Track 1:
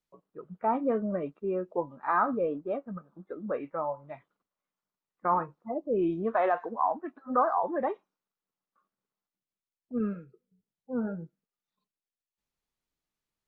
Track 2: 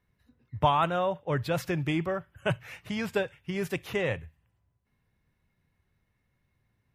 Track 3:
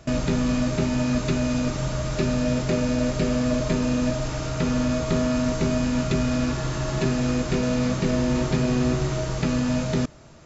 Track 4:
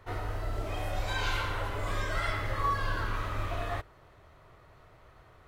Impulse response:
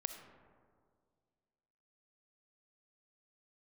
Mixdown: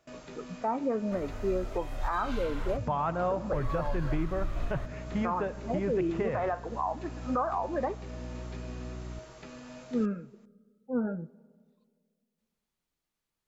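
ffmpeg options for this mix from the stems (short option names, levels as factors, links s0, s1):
-filter_complex "[0:a]volume=1.12,asplit=2[s0][s1];[s1]volume=0.188[s2];[1:a]lowpass=1400,aeval=exprs='val(0)+0.00794*(sin(2*PI*60*n/s)+sin(2*PI*2*60*n/s)/2+sin(2*PI*3*60*n/s)/3+sin(2*PI*4*60*n/s)/4+sin(2*PI*5*60*n/s)/5)':c=same,adelay=2250,volume=0.944,asplit=2[s3][s4];[s4]volume=0.596[s5];[2:a]bass=f=250:g=-13,treble=f=4000:g=-7,highshelf=f=6200:g=7.5,volume=0.133[s6];[3:a]asubboost=boost=9:cutoff=57,adelay=1050,volume=0.531,asplit=3[s7][s8][s9];[s7]atrim=end=2.77,asetpts=PTS-STARTPTS,afade=t=out:st=2.766:d=0.004:c=hsin[s10];[s8]atrim=start=2.77:end=3.53,asetpts=PTS-STARTPTS,volume=0[s11];[s9]atrim=start=3.53,asetpts=PTS-STARTPTS,afade=t=in:d=0.004:c=hsin[s12];[s10][s11][s12]concat=n=3:v=0:a=1[s13];[4:a]atrim=start_sample=2205[s14];[s2][s5]amix=inputs=2:normalize=0[s15];[s15][s14]afir=irnorm=-1:irlink=0[s16];[s0][s3][s6][s13][s16]amix=inputs=5:normalize=0,alimiter=limit=0.0944:level=0:latency=1:release=385"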